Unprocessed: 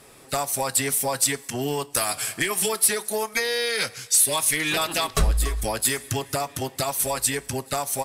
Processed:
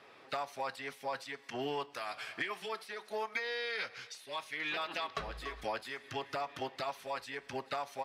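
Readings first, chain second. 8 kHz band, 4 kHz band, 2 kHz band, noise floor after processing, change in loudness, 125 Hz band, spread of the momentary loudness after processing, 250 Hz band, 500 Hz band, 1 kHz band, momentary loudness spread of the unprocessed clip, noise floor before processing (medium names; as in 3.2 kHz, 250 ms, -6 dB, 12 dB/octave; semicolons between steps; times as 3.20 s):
-34.5 dB, -15.0 dB, -10.5 dB, -58 dBFS, -16.0 dB, -23.0 dB, 6 LU, -15.5 dB, -12.0 dB, -9.5 dB, 8 LU, -49 dBFS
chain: high-pass 890 Hz 6 dB/octave; compression 5:1, threshold -30 dBFS, peak gain reduction 14 dB; distance through air 280 m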